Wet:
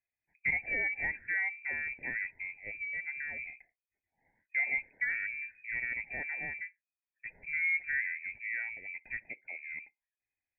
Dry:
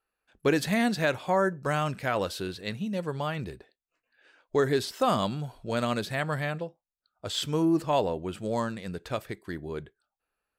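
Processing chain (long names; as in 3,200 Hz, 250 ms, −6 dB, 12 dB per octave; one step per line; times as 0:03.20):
Butterworth band-reject 1,300 Hz, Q 1.1
voice inversion scrambler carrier 2,500 Hz
level −7 dB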